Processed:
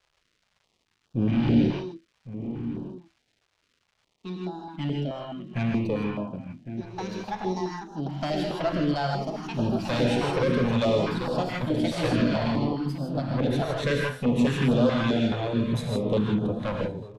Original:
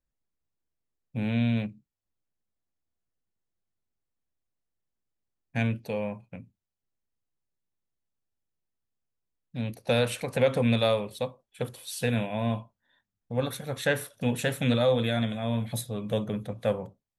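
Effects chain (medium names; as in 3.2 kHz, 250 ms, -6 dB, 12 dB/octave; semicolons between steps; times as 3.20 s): ever faster or slower copies 375 ms, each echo +4 st, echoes 2, each echo -6 dB; valve stage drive 27 dB, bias 0.75; peaking EQ 290 Hz +6 dB 2.2 oct; gated-style reverb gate 180 ms rising, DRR 0 dB; in parallel at -1 dB: peak limiter -20.5 dBFS, peak gain reduction 7 dB; on the sum: crackle 400 per s -51 dBFS; low-pass 4.9 kHz 12 dB/octave; echo from a far wall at 190 m, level -11 dB; step-sequenced notch 4.7 Hz 230–2100 Hz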